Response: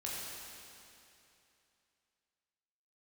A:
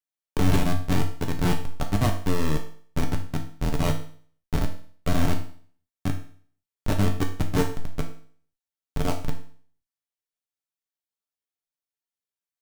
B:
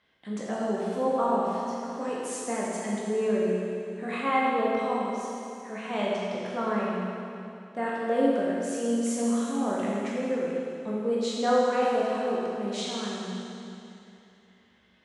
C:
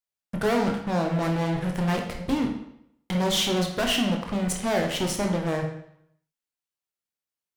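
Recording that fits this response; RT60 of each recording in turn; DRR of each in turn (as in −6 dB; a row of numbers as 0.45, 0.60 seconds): B; 0.50, 2.8, 0.70 seconds; 2.5, −6.0, 2.0 decibels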